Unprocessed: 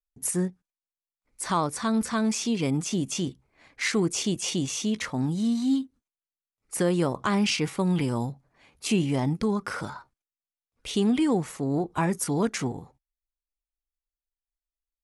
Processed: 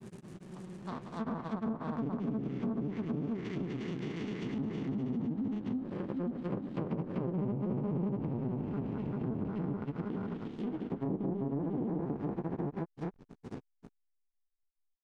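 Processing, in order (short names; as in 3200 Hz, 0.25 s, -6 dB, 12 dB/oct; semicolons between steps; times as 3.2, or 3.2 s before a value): time blur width 0.928 s; backlash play -38.5 dBFS; grains 75 ms, grains 28/s, spray 0.81 s; treble ducked by the level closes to 710 Hz, closed at -29.5 dBFS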